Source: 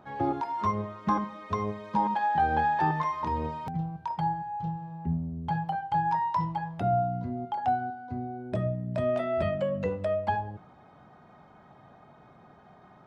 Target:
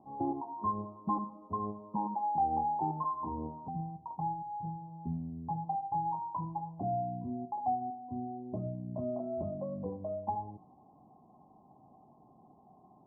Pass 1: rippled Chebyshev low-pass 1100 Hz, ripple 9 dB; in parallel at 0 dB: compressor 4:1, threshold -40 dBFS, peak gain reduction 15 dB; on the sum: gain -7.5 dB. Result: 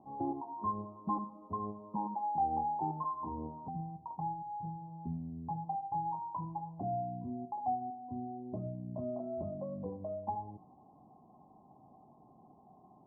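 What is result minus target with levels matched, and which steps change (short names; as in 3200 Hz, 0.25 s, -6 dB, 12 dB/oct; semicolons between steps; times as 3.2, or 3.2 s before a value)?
compressor: peak gain reduction +8 dB
change: compressor 4:1, threshold -29.5 dBFS, peak gain reduction 7.5 dB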